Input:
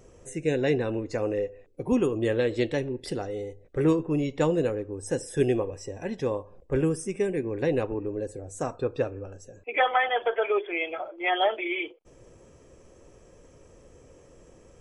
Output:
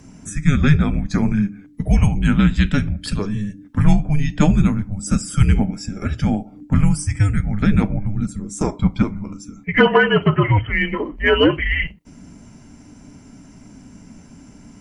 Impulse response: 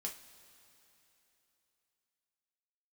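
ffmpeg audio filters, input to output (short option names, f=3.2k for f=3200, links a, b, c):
-filter_complex "[0:a]asplit=2[a][b];[1:a]atrim=start_sample=2205,atrim=end_sample=3528[c];[b][c]afir=irnorm=-1:irlink=0,volume=-12.5dB[d];[a][d]amix=inputs=2:normalize=0,acontrast=32,afreqshift=-300,volume=4dB"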